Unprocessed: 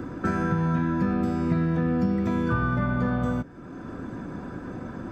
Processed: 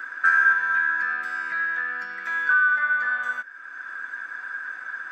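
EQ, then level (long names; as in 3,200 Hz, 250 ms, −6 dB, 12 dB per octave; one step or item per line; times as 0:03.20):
high-pass with resonance 1,600 Hz, resonance Q 11
0.0 dB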